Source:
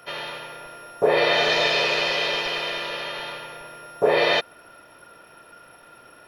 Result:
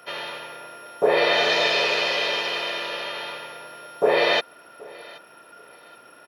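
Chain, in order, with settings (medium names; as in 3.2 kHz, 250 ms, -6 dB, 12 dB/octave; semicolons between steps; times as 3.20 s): high-pass 180 Hz 12 dB/octave; on a send: feedback delay 777 ms, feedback 28%, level -22.5 dB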